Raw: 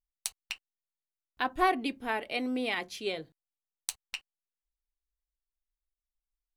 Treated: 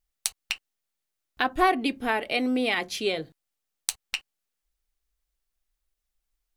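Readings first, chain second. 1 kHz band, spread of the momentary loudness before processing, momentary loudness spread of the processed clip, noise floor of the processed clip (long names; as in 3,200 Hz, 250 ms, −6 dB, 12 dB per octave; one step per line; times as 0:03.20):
+4.5 dB, 14 LU, 11 LU, −84 dBFS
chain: notch filter 980 Hz, Q 12
in parallel at +2.5 dB: downward compressor, threshold −36 dBFS, peak gain reduction 15 dB
on the sum: level +2.5 dB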